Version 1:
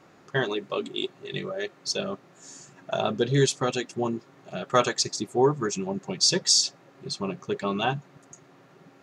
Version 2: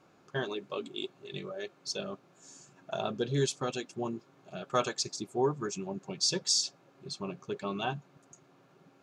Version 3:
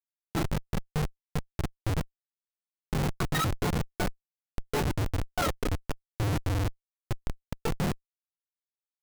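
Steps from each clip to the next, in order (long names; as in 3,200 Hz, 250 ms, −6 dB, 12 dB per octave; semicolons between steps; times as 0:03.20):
notch filter 1,900 Hz, Q 7.1; level −7.5 dB
frequency axis turned over on the octave scale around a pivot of 730 Hz; comparator with hysteresis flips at −31 dBFS; level +4.5 dB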